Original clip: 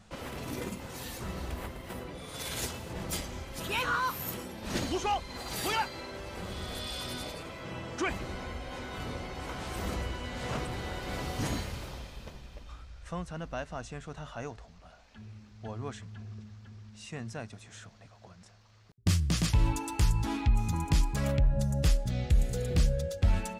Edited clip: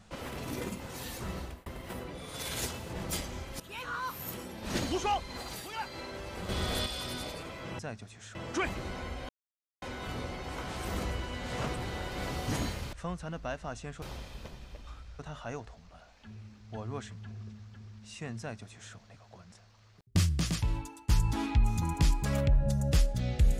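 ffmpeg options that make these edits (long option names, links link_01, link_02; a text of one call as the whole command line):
ffmpeg -i in.wav -filter_complex "[0:a]asplit=14[link_01][link_02][link_03][link_04][link_05][link_06][link_07][link_08][link_09][link_10][link_11][link_12][link_13][link_14];[link_01]atrim=end=1.66,asetpts=PTS-STARTPTS,afade=type=out:start_time=1.36:duration=0.3[link_15];[link_02]atrim=start=1.66:end=3.6,asetpts=PTS-STARTPTS,afade=type=in:duration=0.004:curve=hsin,afade=type=out:start_time=1.936:duration=0.004:curve=hsin:silence=0.16788[link_16];[link_03]atrim=start=3.6:end=5.67,asetpts=PTS-STARTPTS,afade=type=in:duration=1.05:silence=0.16788,afade=type=out:start_time=1.8:duration=0.27:silence=0.237137[link_17];[link_04]atrim=start=5.67:end=5.72,asetpts=PTS-STARTPTS,volume=-12.5dB[link_18];[link_05]atrim=start=5.72:end=6.492,asetpts=PTS-STARTPTS,afade=type=in:duration=0.27:silence=0.237137[link_19];[link_06]atrim=start=6.488:end=6.862,asetpts=PTS-STARTPTS,volume=6dB[link_20];[link_07]atrim=start=6.858:end=7.792[link_21];[link_08]atrim=start=17.298:end=17.862[link_22];[link_09]atrim=start=7.788:end=8.73,asetpts=PTS-STARTPTS,afade=type=out:start_time=0.938:duration=0.004:curve=hsin,apad=pad_dur=0.53[link_23];[link_10]atrim=start=8.73:end=11.842,asetpts=PTS-STARTPTS,afade=type=in:duration=0.004:curve=hsin[link_24];[link_11]atrim=start=13.008:end=14.102[link_25];[link_12]atrim=start=11.838:end=13.012[link_26];[link_13]atrim=start=14.098:end=20,asetpts=PTS-STARTPTS,afade=type=out:start_time=5.042:duration=0.86:silence=0.0841395[link_27];[link_14]atrim=start=20,asetpts=PTS-STARTPTS,afade=type=in:duration=0.004:curve=hsin:silence=0.0841395[link_28];[link_15][link_16][link_17][link_18][link_19]concat=n=5:v=0:a=1[link_29];[link_29][link_20]acrossfade=duration=0.004:curve1=hsin:curve2=hsin[link_30];[link_30][link_21]acrossfade=duration=0.004:curve1=hsin:curve2=hsin[link_31];[link_31][link_22]acrossfade=duration=0.004:curve1=hsin:curve2=hsin[link_32];[link_23][link_24]concat=n=2:v=0:a=1[link_33];[link_32][link_33]acrossfade=duration=0.004:curve1=hsin:curve2=hsin[link_34];[link_34][link_25]acrossfade=duration=0.004:curve1=hsin:curve2=hsin[link_35];[link_35][link_26]acrossfade=duration=0.004:curve1=hsin:curve2=hsin[link_36];[link_27][link_28]concat=n=2:v=0:a=1[link_37];[link_36][link_37]acrossfade=duration=0.004:curve1=hsin:curve2=hsin" out.wav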